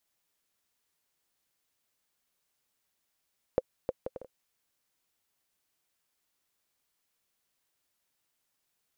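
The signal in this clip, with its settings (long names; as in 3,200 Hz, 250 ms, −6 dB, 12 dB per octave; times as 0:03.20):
bouncing ball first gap 0.31 s, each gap 0.56, 516 Hz, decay 35 ms −13 dBFS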